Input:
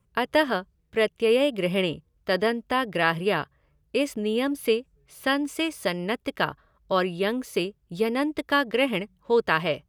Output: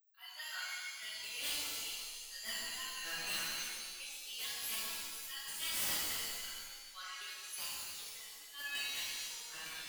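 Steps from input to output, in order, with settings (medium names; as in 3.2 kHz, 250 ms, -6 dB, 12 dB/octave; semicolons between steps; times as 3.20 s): expander on every frequency bin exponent 2; high-pass 1.4 kHz 12 dB/octave; differentiator; in parallel at -0.5 dB: peak limiter -34.5 dBFS, peak gain reduction 8.5 dB; on the sum: upward compressor, threshold -56 dBFS; slow attack 239 ms; integer overflow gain 36.5 dB; on a send: echo whose repeats swap between lows and highs 135 ms, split 1.9 kHz, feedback 53%, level -4.5 dB; on the sum: pitch-shifted reverb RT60 1.3 s, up +7 st, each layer -2 dB, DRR -10.5 dB; trim -4.5 dB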